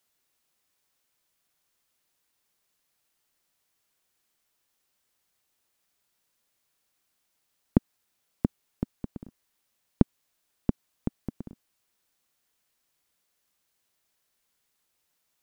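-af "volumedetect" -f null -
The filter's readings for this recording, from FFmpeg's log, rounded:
mean_volume: -38.7 dB
max_volume: -2.6 dB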